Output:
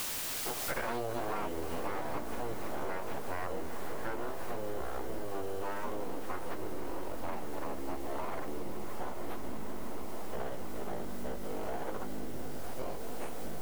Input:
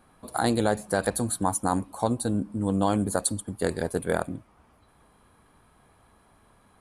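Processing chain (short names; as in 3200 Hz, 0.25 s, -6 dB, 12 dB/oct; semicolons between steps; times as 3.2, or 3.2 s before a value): time stretch by phase-locked vocoder 2×; full-wave rectifier; bell 11000 Hz -8.5 dB 3 oct; in parallel at -7 dB: sample-rate reducer 3500 Hz; on the sum: de-hum 101.4 Hz, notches 12; on a send: swelling echo 0.159 s, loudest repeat 5, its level -17.5 dB; on the sum: echoes that change speed 97 ms, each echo -6 st, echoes 2; vocal rider within 4 dB 0.5 s; tone controls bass -12 dB, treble -13 dB; requantised 8-bit, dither triangular; compressor 8:1, threshold -45 dBFS, peak gain reduction 24 dB; gain +13 dB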